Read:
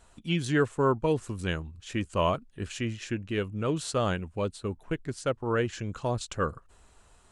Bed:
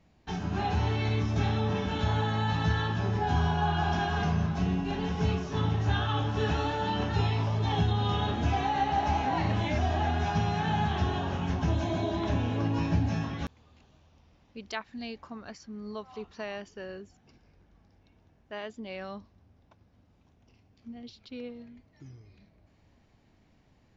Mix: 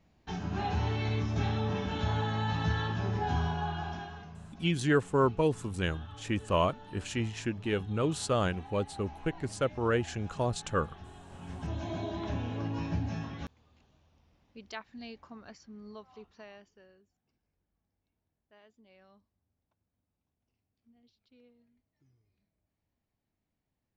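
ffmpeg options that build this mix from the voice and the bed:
ffmpeg -i stem1.wav -i stem2.wav -filter_complex "[0:a]adelay=4350,volume=-1dB[link_01];[1:a]volume=11.5dB,afade=type=out:start_time=3.26:duration=1:silence=0.133352,afade=type=in:start_time=11.26:duration=0.68:silence=0.188365,afade=type=out:start_time=15.58:duration=1.38:silence=0.16788[link_02];[link_01][link_02]amix=inputs=2:normalize=0" out.wav

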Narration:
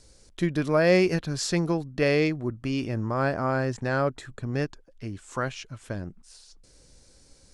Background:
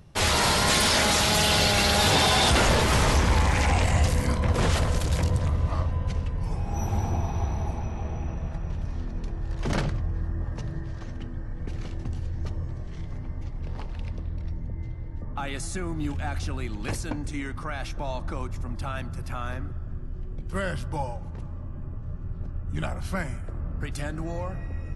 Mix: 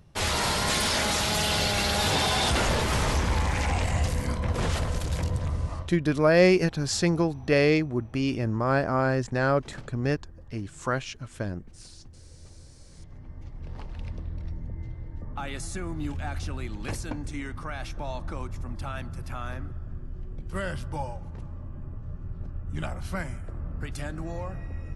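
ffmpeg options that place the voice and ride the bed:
ffmpeg -i stem1.wav -i stem2.wav -filter_complex "[0:a]adelay=5500,volume=1.5dB[link_01];[1:a]volume=12dB,afade=type=out:start_time=5.62:duration=0.34:silence=0.188365,afade=type=in:start_time=12.79:duration=1.3:silence=0.158489[link_02];[link_01][link_02]amix=inputs=2:normalize=0" out.wav

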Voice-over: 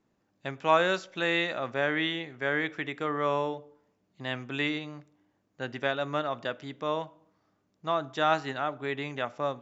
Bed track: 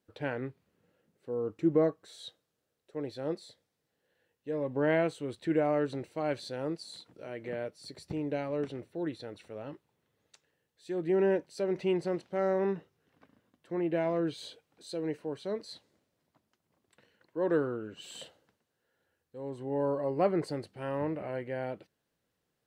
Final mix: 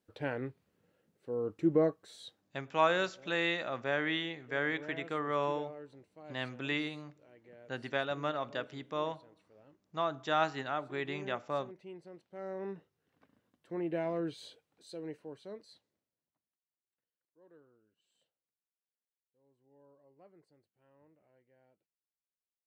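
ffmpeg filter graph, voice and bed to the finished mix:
ffmpeg -i stem1.wav -i stem2.wav -filter_complex "[0:a]adelay=2100,volume=-4.5dB[link_01];[1:a]volume=13dB,afade=type=out:start_time=2.1:duration=0.55:silence=0.133352,afade=type=in:start_time=12.14:duration=1.34:silence=0.188365,afade=type=out:start_time=14.16:duration=2.47:silence=0.0375837[link_02];[link_01][link_02]amix=inputs=2:normalize=0" out.wav

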